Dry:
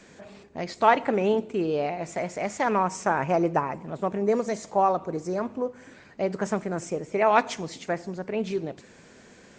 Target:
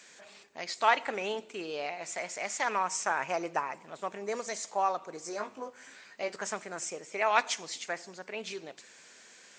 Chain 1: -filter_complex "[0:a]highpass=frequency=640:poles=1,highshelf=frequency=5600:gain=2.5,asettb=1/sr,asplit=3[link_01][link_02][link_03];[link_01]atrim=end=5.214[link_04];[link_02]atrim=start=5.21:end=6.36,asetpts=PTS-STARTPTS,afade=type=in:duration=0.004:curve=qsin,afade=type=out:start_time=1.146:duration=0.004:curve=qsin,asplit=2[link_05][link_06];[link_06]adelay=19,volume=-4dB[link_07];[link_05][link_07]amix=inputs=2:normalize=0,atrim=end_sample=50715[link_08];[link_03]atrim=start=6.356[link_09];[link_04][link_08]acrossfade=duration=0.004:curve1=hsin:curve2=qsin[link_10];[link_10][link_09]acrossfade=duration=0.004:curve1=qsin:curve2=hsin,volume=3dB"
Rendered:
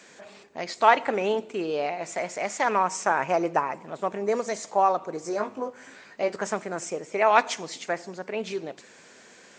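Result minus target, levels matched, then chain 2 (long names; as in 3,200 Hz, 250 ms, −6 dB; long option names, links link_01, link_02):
2,000 Hz band −3.0 dB
-filter_complex "[0:a]highpass=frequency=2400:poles=1,highshelf=frequency=5600:gain=2.5,asettb=1/sr,asplit=3[link_01][link_02][link_03];[link_01]atrim=end=5.214[link_04];[link_02]atrim=start=5.21:end=6.36,asetpts=PTS-STARTPTS,afade=type=in:duration=0.004:curve=qsin,afade=type=out:start_time=1.146:duration=0.004:curve=qsin,asplit=2[link_05][link_06];[link_06]adelay=19,volume=-4dB[link_07];[link_05][link_07]amix=inputs=2:normalize=0,atrim=end_sample=50715[link_08];[link_03]atrim=start=6.356[link_09];[link_04][link_08]acrossfade=duration=0.004:curve1=hsin:curve2=qsin[link_10];[link_10][link_09]acrossfade=duration=0.004:curve1=qsin:curve2=hsin,volume=3dB"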